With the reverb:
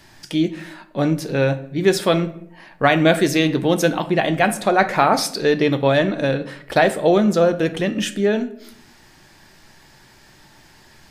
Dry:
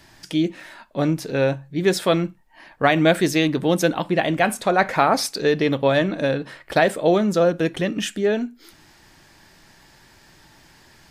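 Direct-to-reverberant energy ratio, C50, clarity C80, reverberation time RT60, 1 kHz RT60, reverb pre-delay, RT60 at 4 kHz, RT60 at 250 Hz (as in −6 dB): 10.0 dB, 15.0 dB, 18.5 dB, 0.70 s, 0.60 s, 5 ms, 0.45 s, 0.90 s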